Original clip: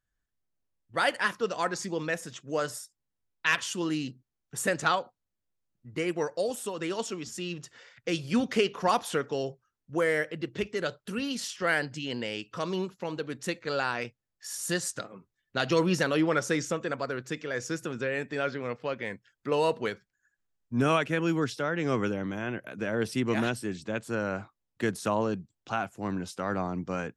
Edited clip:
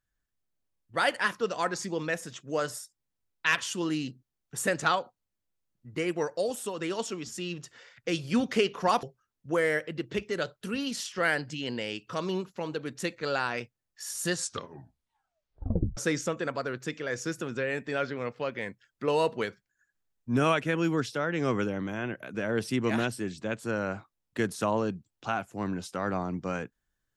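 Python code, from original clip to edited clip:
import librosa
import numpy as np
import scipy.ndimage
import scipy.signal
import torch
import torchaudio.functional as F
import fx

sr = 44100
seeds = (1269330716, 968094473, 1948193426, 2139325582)

y = fx.edit(x, sr, fx.cut(start_s=9.03, length_s=0.44),
    fx.tape_stop(start_s=14.77, length_s=1.64), tone=tone)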